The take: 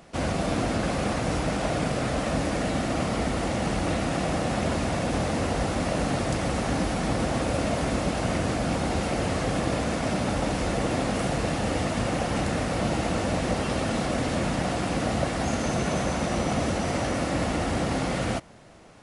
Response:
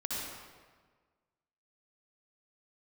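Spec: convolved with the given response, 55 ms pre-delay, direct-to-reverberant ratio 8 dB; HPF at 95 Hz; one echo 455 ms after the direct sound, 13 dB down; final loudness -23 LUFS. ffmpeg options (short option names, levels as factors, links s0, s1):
-filter_complex "[0:a]highpass=95,aecho=1:1:455:0.224,asplit=2[s0][s1];[1:a]atrim=start_sample=2205,adelay=55[s2];[s1][s2]afir=irnorm=-1:irlink=0,volume=0.251[s3];[s0][s3]amix=inputs=2:normalize=0,volume=1.5"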